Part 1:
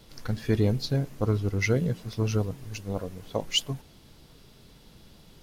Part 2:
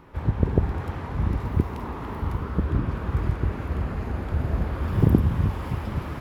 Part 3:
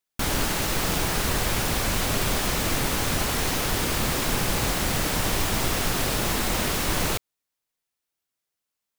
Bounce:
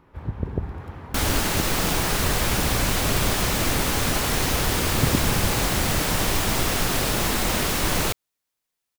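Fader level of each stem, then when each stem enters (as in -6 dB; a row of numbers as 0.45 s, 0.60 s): mute, -6.0 dB, +2.0 dB; mute, 0.00 s, 0.95 s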